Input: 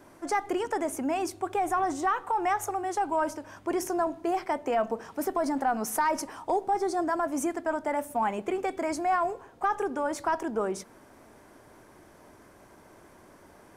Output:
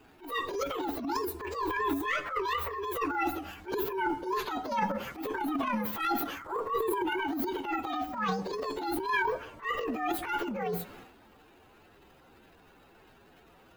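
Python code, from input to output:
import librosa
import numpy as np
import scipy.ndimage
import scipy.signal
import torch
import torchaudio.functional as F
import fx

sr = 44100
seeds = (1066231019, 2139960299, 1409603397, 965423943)

y = fx.partial_stretch(x, sr, pct=129)
y = fx.transient(y, sr, attack_db=-8, sustain_db=10)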